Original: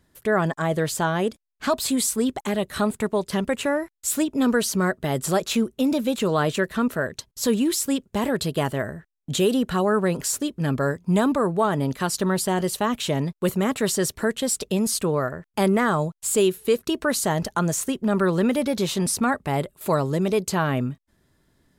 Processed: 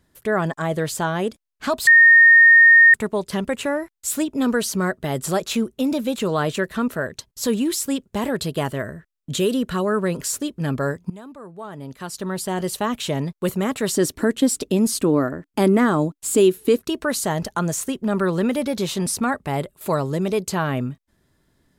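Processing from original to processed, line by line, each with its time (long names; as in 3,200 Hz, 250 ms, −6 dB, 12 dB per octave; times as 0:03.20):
0:01.87–0:02.94: beep over 1,840 Hz −7 dBFS
0:08.70–0:10.37: parametric band 790 Hz −10.5 dB 0.2 octaves
0:11.10–0:12.72: fade in quadratic, from −20 dB
0:13.93–0:16.79: parametric band 290 Hz +14.5 dB 0.54 octaves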